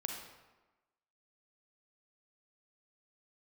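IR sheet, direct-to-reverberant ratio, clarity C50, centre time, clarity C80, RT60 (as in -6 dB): 1.5 dB, 3.0 dB, 46 ms, 5.5 dB, 1.2 s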